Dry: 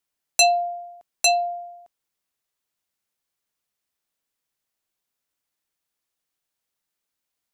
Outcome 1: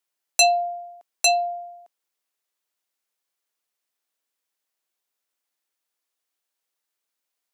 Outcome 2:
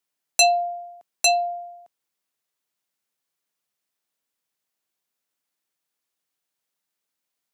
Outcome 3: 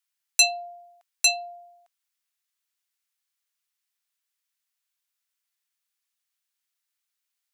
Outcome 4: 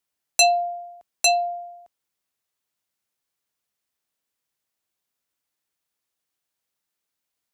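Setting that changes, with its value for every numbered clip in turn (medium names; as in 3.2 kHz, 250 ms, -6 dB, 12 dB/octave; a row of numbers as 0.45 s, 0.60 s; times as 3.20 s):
high-pass, cutoff frequency: 320 Hz, 130 Hz, 1.4 kHz, 41 Hz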